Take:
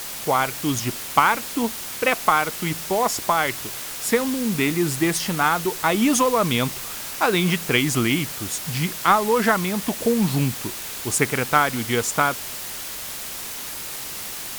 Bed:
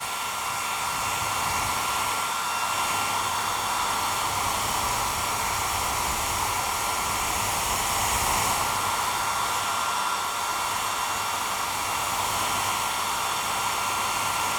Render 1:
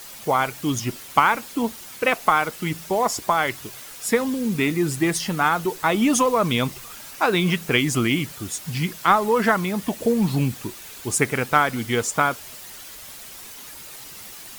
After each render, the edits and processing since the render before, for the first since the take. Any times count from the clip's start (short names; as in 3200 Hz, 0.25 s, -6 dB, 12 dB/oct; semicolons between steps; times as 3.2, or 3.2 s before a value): denoiser 9 dB, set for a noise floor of -33 dBFS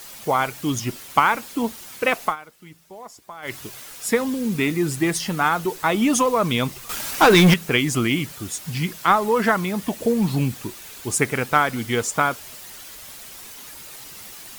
2.24–3.54 dip -18.5 dB, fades 0.12 s; 6.89–7.54 sample leveller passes 3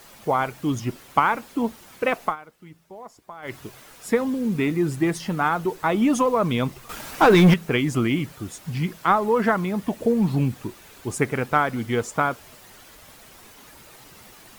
high shelf 2300 Hz -11 dB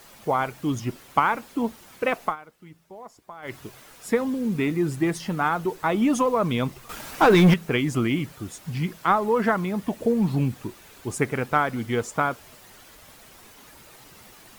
gain -1.5 dB